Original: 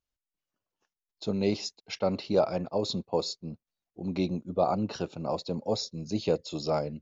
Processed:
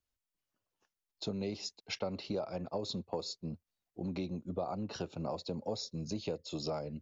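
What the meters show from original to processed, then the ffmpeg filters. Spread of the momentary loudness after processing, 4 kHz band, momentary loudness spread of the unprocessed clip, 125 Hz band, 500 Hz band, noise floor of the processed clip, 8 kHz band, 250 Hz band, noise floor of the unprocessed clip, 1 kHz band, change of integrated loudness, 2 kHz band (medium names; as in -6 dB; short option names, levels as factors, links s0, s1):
5 LU, -5.5 dB, 9 LU, -6.5 dB, -10.0 dB, under -85 dBFS, no reading, -7.5 dB, under -85 dBFS, -10.0 dB, -8.5 dB, -5.5 dB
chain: -filter_complex "[0:a]equalizer=f=86:t=o:w=0.44:g=4.5,acompressor=threshold=0.02:ratio=6,acrossover=split=250|930[s0][s1][s2];[s0]asoftclip=type=hard:threshold=0.0178[s3];[s3][s1][s2]amix=inputs=3:normalize=0"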